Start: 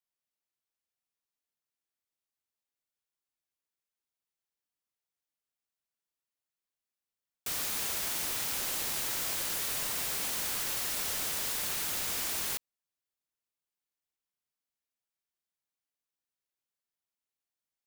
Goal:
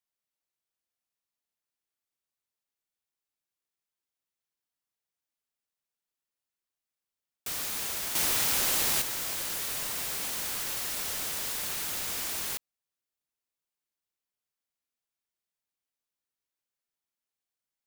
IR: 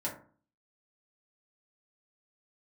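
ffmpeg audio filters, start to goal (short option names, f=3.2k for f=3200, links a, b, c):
-filter_complex "[0:a]asettb=1/sr,asplit=3[a][b][c];[a]atrim=end=8.154[d];[b]atrim=start=8.15:end=9.02,asetpts=PTS-STARTPTS,afade=t=in:d=0.004:c=qsin,afade=t=out:st=0.866:d=0.004:c=qsin,acontrast=76[e];[c]atrim=start=9.016[f];[d][e]acrossfade=d=0.004:c1=hsin:c2=qsin[g];[g][f]acrossfade=d=0.004:c1=qsin:c2=hsin"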